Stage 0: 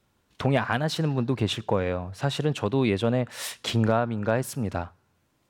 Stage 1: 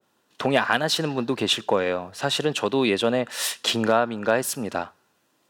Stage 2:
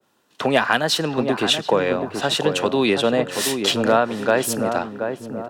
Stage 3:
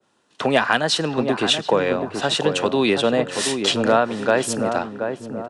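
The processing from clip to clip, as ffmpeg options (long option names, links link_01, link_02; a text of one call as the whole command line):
ffmpeg -i in.wav -af "highpass=260,bandreject=frequency=2200:width=9.8,adynamicequalizer=threshold=0.0112:dfrequency=1600:dqfactor=0.7:tfrequency=1600:tqfactor=0.7:attack=5:release=100:ratio=0.375:range=2.5:mode=boostabove:tftype=highshelf,volume=4dB" out.wav
ffmpeg -i in.wav -filter_complex "[0:a]acrossover=split=160|1700[link_01][link_02][link_03];[link_01]asoftclip=type=tanh:threshold=-37dB[link_04];[link_04][link_02][link_03]amix=inputs=3:normalize=0,asplit=2[link_05][link_06];[link_06]adelay=729,lowpass=frequency=1000:poles=1,volume=-5.5dB,asplit=2[link_07][link_08];[link_08]adelay=729,lowpass=frequency=1000:poles=1,volume=0.48,asplit=2[link_09][link_10];[link_10]adelay=729,lowpass=frequency=1000:poles=1,volume=0.48,asplit=2[link_11][link_12];[link_12]adelay=729,lowpass=frequency=1000:poles=1,volume=0.48,asplit=2[link_13][link_14];[link_14]adelay=729,lowpass=frequency=1000:poles=1,volume=0.48,asplit=2[link_15][link_16];[link_16]adelay=729,lowpass=frequency=1000:poles=1,volume=0.48[link_17];[link_05][link_07][link_09][link_11][link_13][link_15][link_17]amix=inputs=7:normalize=0,volume=3dB" out.wav
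ffmpeg -i in.wav -af "aresample=22050,aresample=44100" out.wav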